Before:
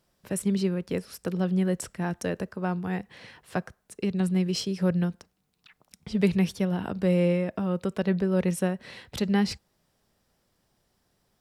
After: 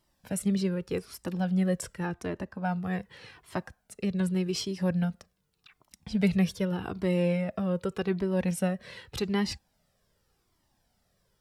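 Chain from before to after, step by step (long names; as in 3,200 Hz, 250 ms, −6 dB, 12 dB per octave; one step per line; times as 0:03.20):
0:02.06–0:02.65: high-shelf EQ 4,800 Hz −10 dB
flanger whose copies keep moving one way falling 0.85 Hz
level +3 dB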